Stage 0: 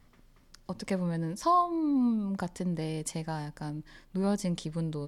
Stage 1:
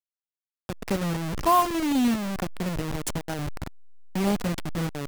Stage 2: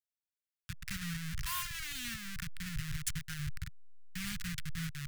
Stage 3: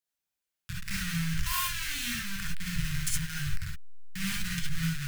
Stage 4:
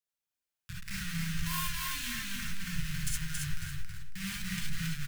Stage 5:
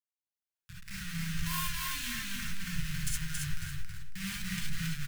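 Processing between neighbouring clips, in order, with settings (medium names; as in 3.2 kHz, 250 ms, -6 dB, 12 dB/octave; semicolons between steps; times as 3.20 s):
send-on-delta sampling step -28.5 dBFS; trim +5 dB
elliptic band-stop 140–1600 Hz, stop band 70 dB; trim -4 dB
gated-style reverb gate 90 ms rising, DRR -3 dB; trim +2.5 dB
feedback delay 275 ms, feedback 26%, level -3.5 dB; trim -5 dB
fade-in on the opening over 1.43 s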